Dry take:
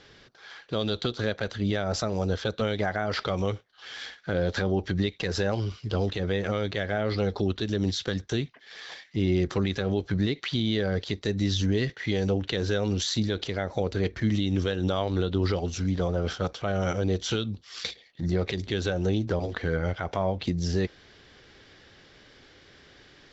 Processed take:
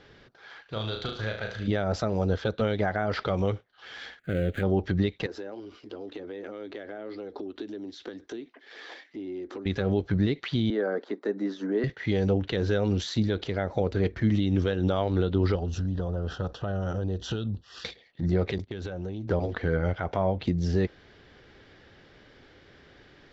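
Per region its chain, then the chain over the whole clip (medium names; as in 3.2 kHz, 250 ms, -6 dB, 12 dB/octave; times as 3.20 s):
0.62–1.68 s: peaking EQ 280 Hz -11 dB 2.3 oct + flutter echo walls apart 6.2 m, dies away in 0.48 s
4.19–4.63 s: dead-time distortion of 0.14 ms + static phaser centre 2.3 kHz, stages 4
5.26–9.66 s: compression 8:1, threshold -36 dBFS + resonant low shelf 200 Hz -13.5 dB, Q 3
10.70–11.84 s: steep high-pass 240 Hz + resonant high shelf 2 kHz -11 dB, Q 1.5
15.55–17.85 s: bass shelf 110 Hz +9 dB + compression 4:1, threshold -27 dBFS + Butterworth band-stop 2.2 kHz, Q 3.7
18.58–19.28 s: gate -34 dBFS, range -23 dB + compression 10:1, threshold -31 dBFS
whole clip: low-pass 1.9 kHz 6 dB/octave; band-stop 1.1 kHz, Q 25; trim +1.5 dB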